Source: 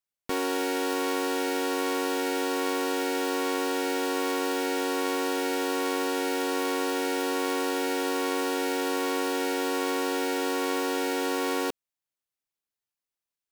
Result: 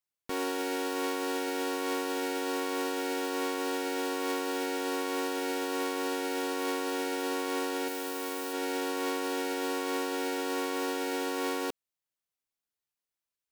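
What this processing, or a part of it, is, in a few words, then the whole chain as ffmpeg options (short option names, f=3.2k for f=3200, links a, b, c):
clipper into limiter: -filter_complex "[0:a]asettb=1/sr,asplit=3[a][b][c];[a]atrim=end=7.884[d];[b]atrim=start=7.88:end=8.53,asetpts=PTS-STARTPTS,afade=t=in:d=0.004:c=qsin,afade=t=out:st=0.646:d=0.004:c=qsin,highshelf=f=9.7k:g=11[e];[c]atrim=start=8.526[f];[d][e]acrossfade=d=0.004:c1=hsin:c2=qsin[g];[g][f]acrossfade=d=0.004:c1=qsin:c2=hsin,asoftclip=type=hard:threshold=-16dB,alimiter=limit=-23dB:level=0:latency=1:release=49,volume=-1.5dB"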